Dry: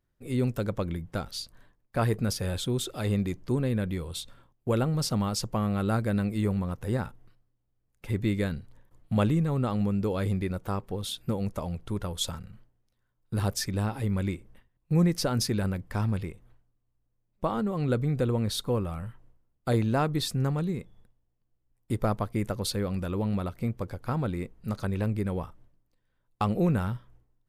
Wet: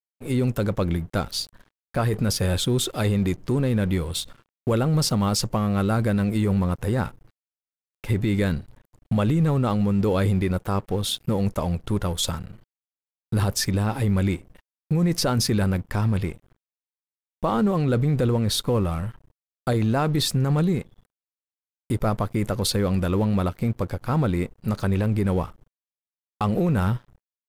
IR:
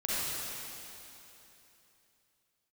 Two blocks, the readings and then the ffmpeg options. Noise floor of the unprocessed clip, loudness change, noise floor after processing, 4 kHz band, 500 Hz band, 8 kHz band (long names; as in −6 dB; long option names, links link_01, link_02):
−75 dBFS, +5.5 dB, below −85 dBFS, +7.0 dB, +5.5 dB, +7.0 dB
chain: -af "alimiter=limit=-22.5dB:level=0:latency=1:release=12,aeval=exprs='sgn(val(0))*max(abs(val(0))-0.002,0)':channel_layout=same,volume=9dB"